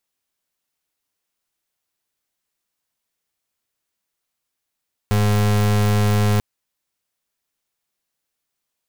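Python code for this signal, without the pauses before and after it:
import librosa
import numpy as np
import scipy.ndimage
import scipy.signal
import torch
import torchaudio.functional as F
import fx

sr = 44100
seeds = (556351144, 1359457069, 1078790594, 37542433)

y = fx.pulse(sr, length_s=1.29, hz=104.0, level_db=-16.5, duty_pct=35)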